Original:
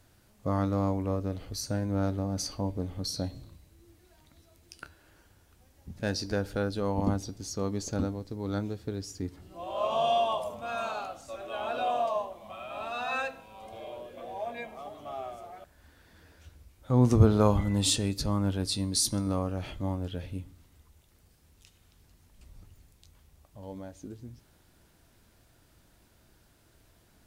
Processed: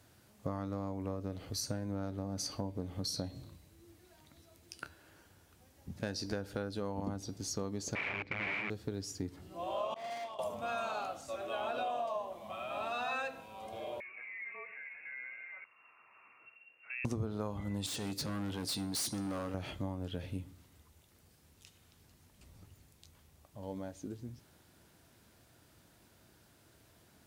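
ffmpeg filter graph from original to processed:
-filter_complex "[0:a]asettb=1/sr,asplit=3[a][b][c];[a]atrim=end=7.954[d];[b]atrim=start=7.95:end=8.7,asetpts=PTS-STARTPTS,afade=t=in:d=0.004:c=qsin,afade=t=out:st=0.746:d=0.004:c=qsin,aeval=exprs='(mod(50.1*val(0)+1,2)-1)/50.1':c=same,lowpass=f=2.3k:t=q:w=10[e];[c]atrim=start=8.696[f];[d][e]acrossfade=d=0.004:c1=hsin:c2=qsin[g];[g][f]acrossfade=d=0.004:c1=qsin:c2=hsin,asettb=1/sr,asplit=3[h][i][j];[h]atrim=end=9.944[k];[i]atrim=start=9.94:end=10.39,asetpts=PTS-STARTPTS,afade=t=in:d=0.004:c=qsin,afade=t=out:st=0.446:d=0.004:c=qsin,agate=range=-33dB:threshold=-19dB:ratio=3:release=100:detection=peak,asoftclip=type=hard:threshold=-40dB,asplit=2[l][m];[m]adelay=42,volume=-10.5dB[n];[l][n]amix=inputs=2:normalize=0,atrim=end_sample=19845[o];[j]atrim=start=10.386[p];[k][o]acrossfade=d=0.004:c1=hsin:c2=qsin[q];[q][p]acrossfade=d=0.004:c1=qsin:c2=hsin,asettb=1/sr,asplit=3[r][s][t];[r]atrim=end=14.004[u];[s]atrim=start=14:end=17.05,asetpts=PTS-STARTPTS,afade=t=in:d=0.004:c=qsin,afade=t=out:st=3.046:d=0.004:c=qsin,equalizer=f=130:w=0.4:g=-10.5,acompressor=threshold=-44dB:ratio=2.5:attack=3.2:release=140:knee=1:detection=peak,lowpass=f=2.4k:t=q:w=0.5098,lowpass=f=2.4k:t=q:w=0.6013,lowpass=f=2.4k:t=q:w=0.9,lowpass=f=2.4k:t=q:w=2.563,afreqshift=-2800[v];[t]atrim=start=17.046[w];[u][v]acrossfade=d=0.004:c1=hsin:c2=qsin[x];[x][w]acrossfade=d=0.004:c1=qsin:c2=hsin,asettb=1/sr,asplit=3[y][z][aa];[y]atrim=end=17.864[ab];[z]atrim=start=17.86:end=19.54,asetpts=PTS-STARTPTS,afade=t=in:d=0.004:c=qsin,afade=t=out:st=1.676:d=0.004:c=qsin,highpass=f=150:p=1,volume=32.5dB,asoftclip=hard,volume=-32.5dB[ac];[aa]atrim=start=19.536[ad];[ab][ac]acrossfade=d=0.004:c1=hsin:c2=qsin[ae];[ae][ad]acrossfade=d=0.004:c1=qsin:c2=hsin,highpass=86,acompressor=threshold=-33dB:ratio=10"

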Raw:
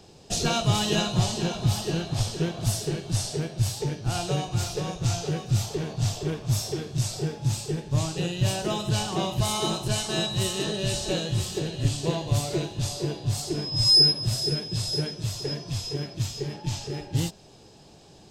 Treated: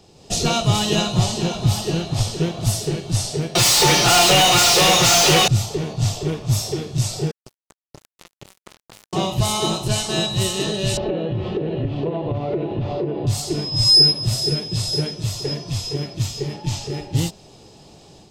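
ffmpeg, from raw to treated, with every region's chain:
-filter_complex "[0:a]asettb=1/sr,asplit=3[a][b][c];[a]atrim=end=3.554[d];[b]atrim=start=3.55:end=5.48,asetpts=PTS-STARTPTS,afade=t=in:d=0.004:c=qsin,afade=t=out:st=1.926:d=0.004:c=qsin,tiltshelf=f=650:g=-5,aecho=1:1:5.7:0.92,atrim=end_sample=85113,asplit=2[e][f];[f]highpass=f=720:p=1,volume=35dB,asoftclip=type=tanh:threshold=-12dB[g];[e][g]amix=inputs=2:normalize=0,lowpass=f=5.4k:p=1,volume=-6dB[h];[c]atrim=start=5.476[i];[d][h]acrossfade=d=0.004:c1=hsin:c2=qsin[j];[j][i]acrossfade=d=0.004:c1=qsin:c2=hsin,asettb=1/sr,asplit=3[k][l][m];[k]atrim=end=7.314[n];[l]atrim=start=7.31:end=9.13,asetpts=PTS-STARTPTS,afade=t=in:d=0.004:c=qsin,afade=t=out:st=1.816:d=0.004:c=qsin,highpass=130,acrusher=bits=2:mix=0:aa=0.5,acompressor=threshold=-44dB:ratio=5:attack=3.2:release=140:knee=1:detection=peak[o];[m]atrim=start=9.126[p];[n][o]acrossfade=d=0.004:c1=hsin:c2=qsin[q];[q][p]acrossfade=d=0.004:c1=qsin:c2=hsin,asettb=1/sr,asplit=3[r][s][t];[r]atrim=end=10.974[u];[s]atrim=start=10.97:end=13.27,asetpts=PTS-STARTPTS,afade=t=in:d=0.004:c=qsin,afade=t=out:st=2.296:d=0.004:c=qsin,lowpass=f=2.8k:w=0.5412,lowpass=f=2.8k:w=1.3066,equalizer=f=390:t=o:w=2.7:g=12,acompressor=threshold=-25dB:ratio=8:attack=3.2:release=140:knee=1:detection=peak[v];[t]atrim=start=13.266[w];[u][v]acrossfade=d=0.004:c1=hsin:c2=qsin[x];[x][w]acrossfade=d=0.004:c1=qsin:c2=hsin,bandreject=f=1.6k:w=9.4,dynaudnorm=f=130:g=3:m=5.5dB"

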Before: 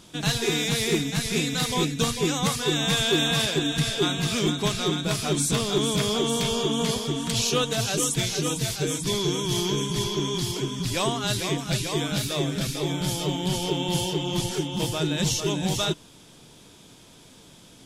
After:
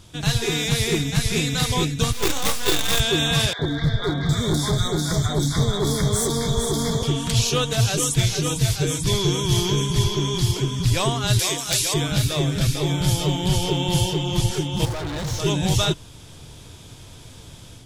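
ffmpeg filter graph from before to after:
-filter_complex "[0:a]asettb=1/sr,asplit=3[a][b][c];[a]atrim=end=2.124[d];[b]atrim=start=2.12:end=3,asetpts=PTS-STARTPTS,afade=t=in:d=0.004:c=qsin,afade=t=out:st=0.876:d=0.004:c=qsin,highpass=f=230:w=0.5412,highpass=f=230:w=1.3066,asplit=2[e][f];[f]adelay=26,volume=-4dB[g];[e][g]amix=inputs=2:normalize=0,atrim=end_sample=38808,acrusher=bits=4:dc=4:mix=0:aa=0.000001[h];[c]atrim=start=2.996[i];[d][h]acrossfade=d=0.004:c1=hsin:c2=qsin[j];[j][i]acrossfade=d=0.004:c1=qsin:c2=hsin,asettb=1/sr,asplit=3[k][l][m];[k]atrim=end=3.534[n];[l]atrim=start=3.53:end=7.03,asetpts=PTS-STARTPTS,afade=t=in:d=0.004:c=qsin,afade=t=out:st=3.496:d=0.004:c=qsin,acrossover=split=840|3500[o][p][q];[o]adelay=60[r];[q]adelay=760[s];[r][p][s]amix=inputs=3:normalize=0,atrim=end_sample=154350,asoftclip=type=hard:threshold=-21.5dB,asuperstop=centerf=2700:order=8:qfactor=2.3[t];[m]atrim=start=7.026[u];[n][t]acrossfade=d=0.004:c1=hsin:c2=qsin[v];[v][u]acrossfade=d=0.004:c1=qsin:c2=hsin,asettb=1/sr,asplit=3[w][x][y];[w]atrim=end=11.394[z];[x]atrim=start=11.39:end=11.94,asetpts=PTS-STARTPTS,afade=t=in:d=0.004:c=qsin,afade=t=out:st=0.546:d=0.004:c=qsin,bass=f=250:g=-15,treble=f=4k:g=10,aeval=exprs='(mod(3.16*val(0)+1,2)-1)/3.16':c=same[aa];[y]atrim=start=11.936[ab];[z][aa]acrossfade=d=0.004:c1=hsin:c2=qsin[ac];[ac][ab]acrossfade=d=0.004:c1=qsin:c2=hsin,asettb=1/sr,asplit=3[ad][ae][af];[ad]atrim=end=14.854[ag];[ae]atrim=start=14.85:end=15.4,asetpts=PTS-STARTPTS,afade=t=in:d=0.004:c=qsin,afade=t=out:st=0.546:d=0.004:c=qsin,equalizer=f=2.7k:t=o:w=0.46:g=-13,asplit=2[ah][ai];[ai]highpass=f=720:p=1,volume=21dB,asoftclip=type=tanh:threshold=-14.5dB[aj];[ah][aj]amix=inputs=2:normalize=0,lowpass=f=1k:p=1,volume=-6dB,asoftclip=type=hard:threshold=-32dB[ak];[af]atrim=start=15.396[al];[ag][ak]acrossfade=d=0.004:c1=hsin:c2=qsin[am];[am][al]acrossfade=d=0.004:c1=qsin:c2=hsin,acontrast=43,lowshelf=f=140:t=q:w=1.5:g=10.5,dynaudnorm=f=160:g=3:m=5.5dB,volume=-6dB"

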